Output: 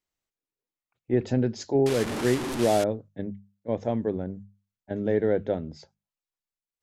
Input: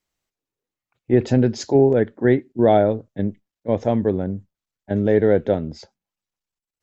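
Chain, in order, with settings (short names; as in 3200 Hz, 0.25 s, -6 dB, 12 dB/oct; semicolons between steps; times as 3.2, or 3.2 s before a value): 1.86–2.84 delta modulation 64 kbps, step -17 dBFS; notches 50/100/150/200 Hz; gain -7.5 dB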